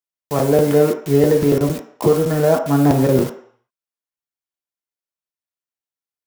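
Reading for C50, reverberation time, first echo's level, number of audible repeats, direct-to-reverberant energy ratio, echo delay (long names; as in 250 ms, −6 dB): 8.5 dB, 0.60 s, no echo audible, no echo audible, 3.5 dB, no echo audible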